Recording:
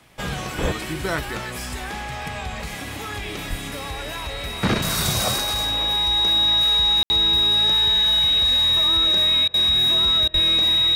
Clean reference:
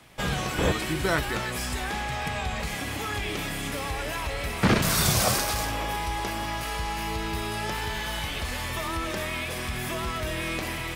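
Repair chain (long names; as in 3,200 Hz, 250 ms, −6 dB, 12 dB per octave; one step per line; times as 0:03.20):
notch filter 3,800 Hz, Q 30
0:00.61–0:00.73: high-pass filter 140 Hz 24 dB per octave
0:03.49–0:03.61: high-pass filter 140 Hz 24 dB per octave
0:10.33–0:10.45: high-pass filter 140 Hz 24 dB per octave
ambience match 0:07.03–0:07.10
repair the gap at 0:09.48/0:10.28, 58 ms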